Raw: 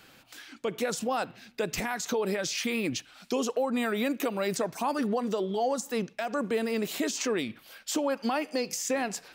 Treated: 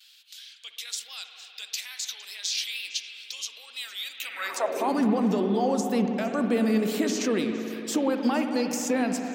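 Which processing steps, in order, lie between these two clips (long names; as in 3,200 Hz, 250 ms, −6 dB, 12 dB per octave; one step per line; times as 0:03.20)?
pitch vibrato 2.2 Hz 82 cents
on a send: echo through a band-pass that steps 115 ms, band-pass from 330 Hz, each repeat 1.4 octaves, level −9.5 dB
on the sum: spring reverb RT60 3.9 s, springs 59 ms, chirp 75 ms, DRR 5.5 dB
high-pass filter sweep 3,600 Hz → 190 Hz, 0:04.17–0:05.03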